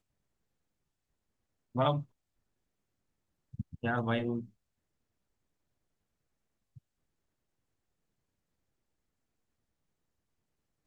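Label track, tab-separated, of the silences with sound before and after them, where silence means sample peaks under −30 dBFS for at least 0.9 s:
1.990000	3.600000	silence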